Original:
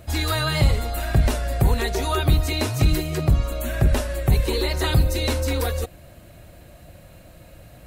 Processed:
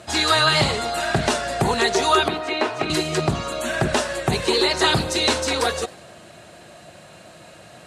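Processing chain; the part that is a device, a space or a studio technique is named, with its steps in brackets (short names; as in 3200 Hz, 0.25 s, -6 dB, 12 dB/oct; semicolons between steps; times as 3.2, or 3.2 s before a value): 2.28–2.9 three-band isolator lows -16 dB, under 250 Hz, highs -19 dB, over 2900 Hz; full-range speaker at full volume (Doppler distortion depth 0.19 ms; speaker cabinet 260–9000 Hz, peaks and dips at 280 Hz -8 dB, 530 Hz -7 dB, 2200 Hz -4 dB); warbling echo 0.101 s, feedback 58%, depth 220 cents, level -23 dB; gain +9 dB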